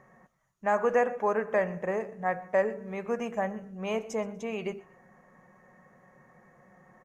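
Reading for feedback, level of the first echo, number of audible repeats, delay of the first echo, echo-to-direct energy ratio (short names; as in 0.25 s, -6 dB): 27%, -21.0 dB, 2, 0.122 s, -20.5 dB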